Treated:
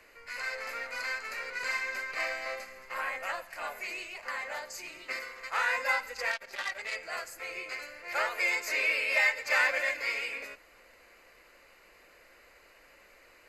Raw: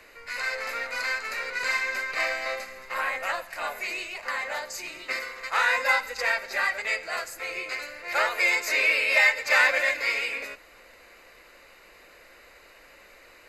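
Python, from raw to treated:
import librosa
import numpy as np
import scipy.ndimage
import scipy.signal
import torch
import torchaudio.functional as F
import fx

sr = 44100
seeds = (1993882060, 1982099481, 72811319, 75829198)

y = fx.notch(x, sr, hz=3800.0, q=11.0)
y = fx.transformer_sat(y, sr, knee_hz=3700.0, at=(6.31, 6.96))
y = y * 10.0 ** (-6.0 / 20.0)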